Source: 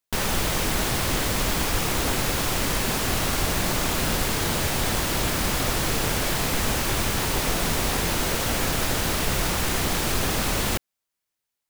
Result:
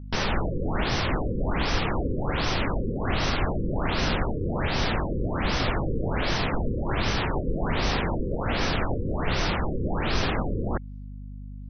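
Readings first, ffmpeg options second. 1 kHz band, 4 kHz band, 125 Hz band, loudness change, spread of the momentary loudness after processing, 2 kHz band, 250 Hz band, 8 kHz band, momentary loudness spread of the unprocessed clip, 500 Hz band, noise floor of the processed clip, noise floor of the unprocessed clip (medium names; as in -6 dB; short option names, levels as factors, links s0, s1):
-1.5 dB, -5.5 dB, +0.5 dB, -3.5 dB, 3 LU, -3.0 dB, 0.0 dB, -18.0 dB, 0 LU, -0.5 dB, -38 dBFS, -84 dBFS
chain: -af "aeval=exprs='val(0)+0.0141*(sin(2*PI*50*n/s)+sin(2*PI*2*50*n/s)/2+sin(2*PI*3*50*n/s)/3+sin(2*PI*4*50*n/s)/4+sin(2*PI*5*50*n/s)/5)':c=same,afftfilt=real='re*lt(b*sr/1024,530*pow(6300/530,0.5+0.5*sin(2*PI*1.3*pts/sr)))':imag='im*lt(b*sr/1024,530*pow(6300/530,0.5+0.5*sin(2*PI*1.3*pts/sr)))':win_size=1024:overlap=0.75"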